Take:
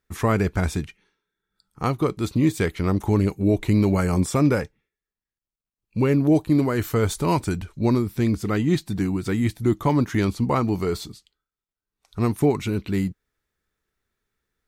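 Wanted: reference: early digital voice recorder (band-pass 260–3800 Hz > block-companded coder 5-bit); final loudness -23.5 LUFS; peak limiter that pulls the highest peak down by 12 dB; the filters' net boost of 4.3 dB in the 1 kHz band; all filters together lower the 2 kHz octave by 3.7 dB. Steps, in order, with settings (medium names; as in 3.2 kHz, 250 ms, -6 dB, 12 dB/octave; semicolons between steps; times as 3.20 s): peaking EQ 1 kHz +7 dB; peaking EQ 2 kHz -7.5 dB; peak limiter -18.5 dBFS; band-pass 260–3800 Hz; block-companded coder 5-bit; trim +8.5 dB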